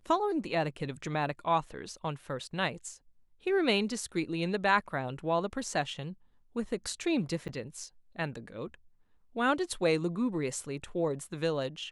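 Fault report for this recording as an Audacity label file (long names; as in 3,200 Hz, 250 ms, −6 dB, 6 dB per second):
7.480000	7.490000	drop-out 8.4 ms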